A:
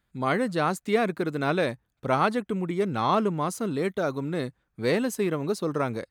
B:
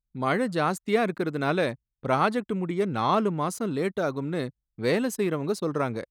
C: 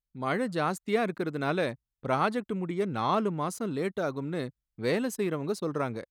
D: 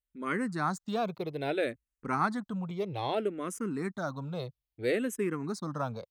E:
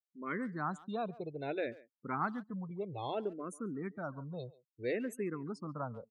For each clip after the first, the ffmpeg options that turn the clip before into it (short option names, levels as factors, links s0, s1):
-af "anlmdn=0.0398"
-af "dynaudnorm=f=170:g=3:m=1.5,volume=0.447"
-filter_complex "[0:a]asplit=2[s0][s1];[s1]afreqshift=-0.61[s2];[s0][s2]amix=inputs=2:normalize=1"
-filter_complex "[0:a]afftdn=nr=35:nf=-41,asplit=2[s0][s1];[s1]adelay=140,highpass=300,lowpass=3400,asoftclip=type=hard:threshold=0.0562,volume=0.112[s2];[s0][s2]amix=inputs=2:normalize=0,volume=0.501"